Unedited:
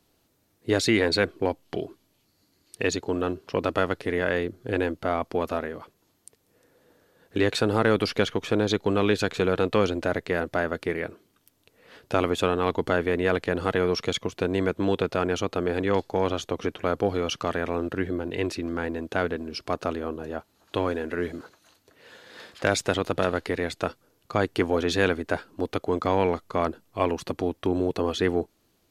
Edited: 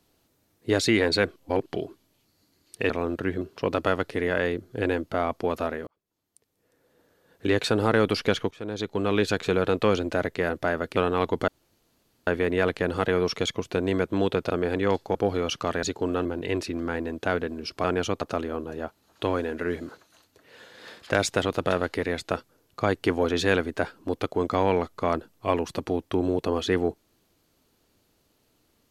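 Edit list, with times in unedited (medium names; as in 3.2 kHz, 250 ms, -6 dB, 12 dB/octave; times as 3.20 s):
1.36–1.66 s: reverse
2.90–3.32 s: swap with 17.63–18.14 s
5.78–7.47 s: fade in
8.42–9.16 s: fade in, from -18.5 dB
10.87–12.42 s: delete
12.94 s: insert room tone 0.79 s
15.17–15.54 s: move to 19.73 s
16.19–16.95 s: delete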